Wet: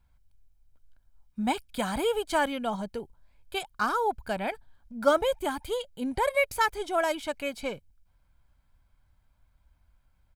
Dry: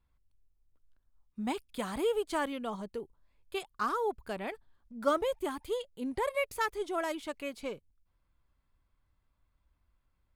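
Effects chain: comb 1.3 ms, depth 46%; gain +6 dB

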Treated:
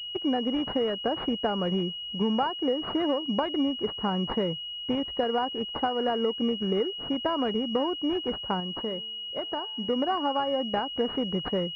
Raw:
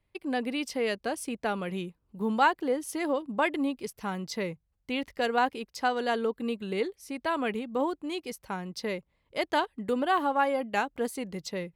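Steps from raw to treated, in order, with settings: compressor 16:1, threshold -31 dBFS, peak gain reduction 14.5 dB; 8.6–9.9 resonator 220 Hz, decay 1 s, mix 50%; pulse-width modulation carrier 2900 Hz; gain +8.5 dB

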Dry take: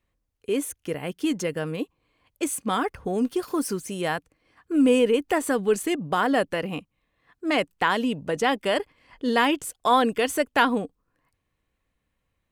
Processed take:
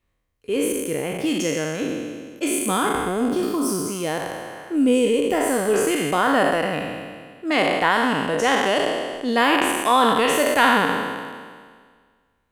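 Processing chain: spectral trails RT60 1.76 s; 3.55–5.74 dynamic EQ 1500 Hz, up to -6 dB, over -36 dBFS, Q 0.82

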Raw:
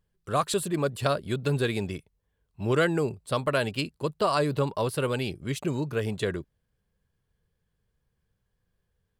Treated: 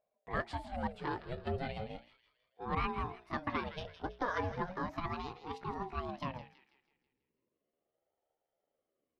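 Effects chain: gliding pitch shift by +8 st starting unshifted; LPF 2700 Hz 12 dB/oct; notches 60/120/180/240/300/360/420/480 Hz; thin delay 0.163 s, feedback 46%, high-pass 1500 Hz, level -10.5 dB; ring modulator with a swept carrier 430 Hz, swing 45%, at 0.36 Hz; gain -6.5 dB

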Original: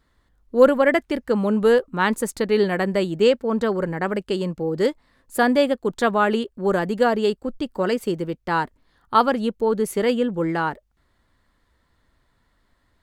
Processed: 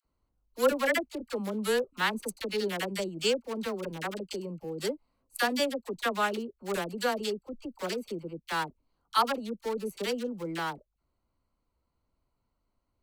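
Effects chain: Wiener smoothing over 25 samples; pre-emphasis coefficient 0.9; dispersion lows, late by 50 ms, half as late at 750 Hz; gain +7 dB

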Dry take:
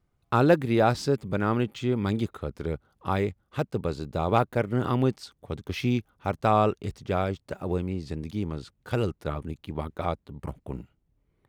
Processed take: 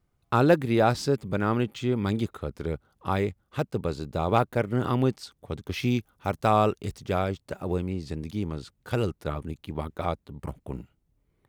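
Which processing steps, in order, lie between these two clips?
high shelf 5900 Hz +3 dB, from 5.83 s +9 dB, from 7.19 s +4 dB

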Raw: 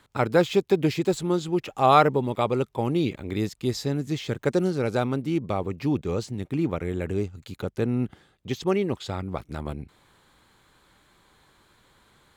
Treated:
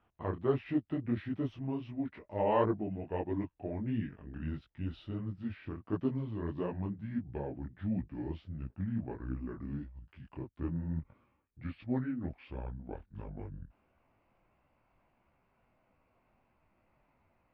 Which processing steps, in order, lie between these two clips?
speed glide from 78% -> 63%; air absorption 480 m; detuned doubles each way 52 cents; gain -7 dB

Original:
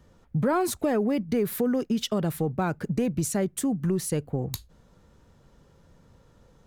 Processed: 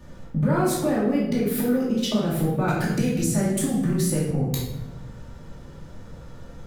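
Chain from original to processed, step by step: compressor 5:1, threshold -35 dBFS, peak gain reduction 13 dB; shoebox room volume 380 m³, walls mixed, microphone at 2.5 m; 2.68–4.31 three-band squash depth 70%; gain +6 dB

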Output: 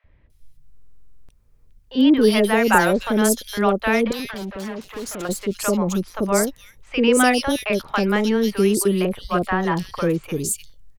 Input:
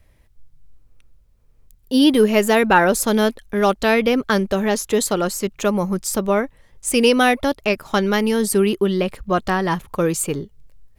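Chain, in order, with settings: 4.07–5.25 tube stage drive 27 dB, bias 0.6; three bands offset in time mids, lows, highs 40/300 ms, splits 670/3200 Hz; stuck buffer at 0.73, samples 2048, times 11

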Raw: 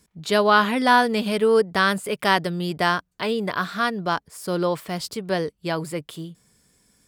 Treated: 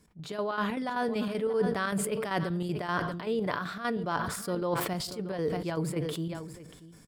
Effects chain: high shelf 2000 Hz -8 dB; reverse; compressor 10:1, threshold -27 dBFS, peak gain reduction 14 dB; reverse; chopper 5.2 Hz, depth 60%, duty 65%; echo 0.635 s -17.5 dB; on a send at -15 dB: reverb RT60 0.55 s, pre-delay 7 ms; on the sum: sustainer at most 43 dB/s

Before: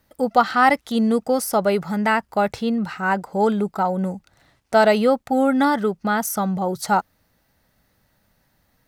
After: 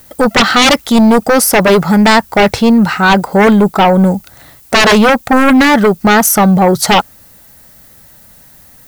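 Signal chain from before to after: sine folder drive 13 dB, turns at -3.5 dBFS; added noise violet -42 dBFS

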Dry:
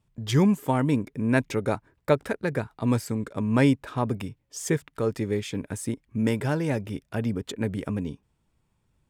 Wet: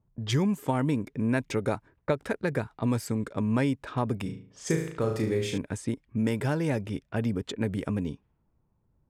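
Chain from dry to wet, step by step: 4.22–5.58 flutter echo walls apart 6.3 m, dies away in 0.49 s; compressor, threshold -22 dBFS, peak gain reduction 8 dB; low-pass opened by the level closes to 920 Hz, open at -26 dBFS

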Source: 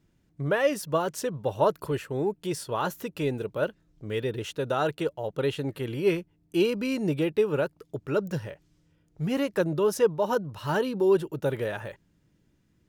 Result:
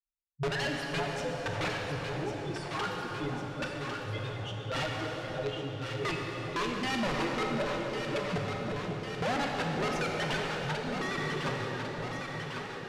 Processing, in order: per-bin expansion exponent 3; limiter -26 dBFS, peak gain reduction 11.5 dB; wrapped overs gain 30.5 dB; Bessel low-pass 3200 Hz, order 2; plate-style reverb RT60 4.2 s, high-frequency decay 0.8×, DRR 0 dB; 10.72–11.18 compressor, threshold -38 dBFS, peak gain reduction 5.5 dB; on a send: echo with dull and thin repeats by turns 0.55 s, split 830 Hz, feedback 81%, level -5.5 dB; on the sum: soft clip -30 dBFS, distortion -18 dB; gain +5.5 dB

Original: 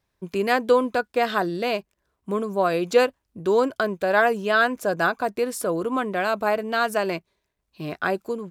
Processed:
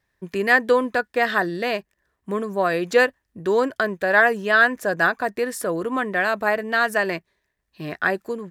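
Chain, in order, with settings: bell 1800 Hz +14.5 dB 0.24 oct

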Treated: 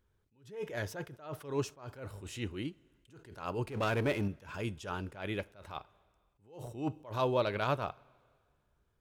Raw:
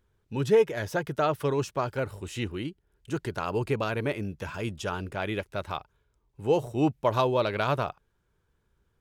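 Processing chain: 3.67–4.28 power-law curve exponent 0.7; two-slope reverb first 0.25 s, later 2 s, from -18 dB, DRR 17 dB; attack slew limiter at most 130 dB/s; gain -4.5 dB

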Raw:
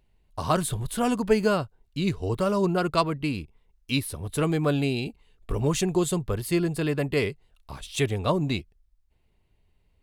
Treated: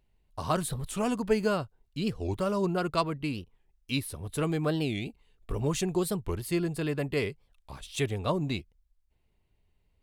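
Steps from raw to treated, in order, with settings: record warp 45 rpm, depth 250 cents; gain -4.5 dB

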